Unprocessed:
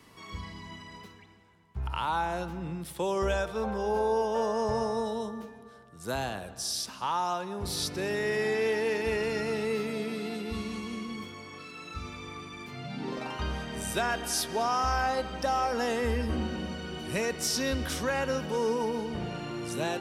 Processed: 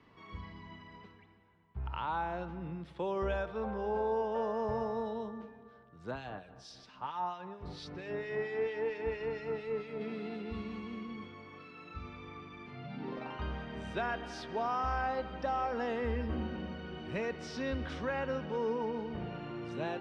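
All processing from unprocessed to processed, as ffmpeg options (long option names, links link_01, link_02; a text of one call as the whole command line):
ffmpeg -i in.wav -filter_complex "[0:a]asettb=1/sr,asplit=3[link_01][link_02][link_03];[link_01]atrim=end=6.114[link_04];[link_02]atrim=start=6.11:end=10.01,asetpts=PTS-STARTPTS,afade=type=in:duration=0.004:curve=qsin,afade=type=out:start_time=3.896:duration=0.004:curve=qsin,asubboost=boost=3:cutoff=75,aecho=1:1:6.7:0.36,atrim=end_sample=171990,acrossover=split=2000[link_05][link_06];[link_05]aeval=exprs='val(0)*(1-0.7/2+0.7/2*cos(2*PI*4.4*n/s))':channel_layout=same[link_07];[link_06]aeval=exprs='val(0)*(1-0.7/2-0.7/2*cos(2*PI*4.4*n/s))':channel_layout=same[link_08];[link_07][link_08]amix=inputs=2:normalize=0[link_09];[link_03]atrim=start=10.006[link_10];[link_04][link_09]acrossfade=duration=0.004:curve1=hsin:curve2=qsin[link_11];[link_11][link_10]acrossfade=duration=0.004:curve1=qsin:curve2=hsin,lowpass=3600,aemphasis=mode=reproduction:type=50fm,volume=-5.5dB" out.wav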